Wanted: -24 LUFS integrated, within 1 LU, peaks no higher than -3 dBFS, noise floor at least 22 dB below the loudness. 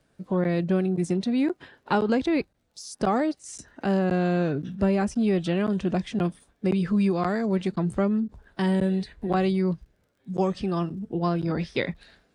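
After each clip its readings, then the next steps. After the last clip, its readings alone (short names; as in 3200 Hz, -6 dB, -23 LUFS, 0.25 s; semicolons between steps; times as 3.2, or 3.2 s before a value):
ticks 16/s; loudness -26.0 LUFS; peak -10.5 dBFS; loudness target -24.0 LUFS
-> de-click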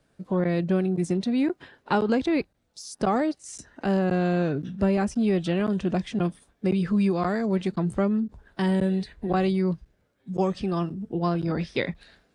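ticks 0/s; loudness -26.0 LUFS; peak -10.5 dBFS; loudness target -24.0 LUFS
-> gain +2 dB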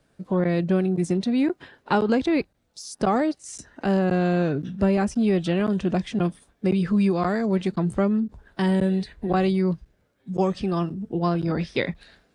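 loudness -24.0 LUFS; peak -8.5 dBFS; noise floor -67 dBFS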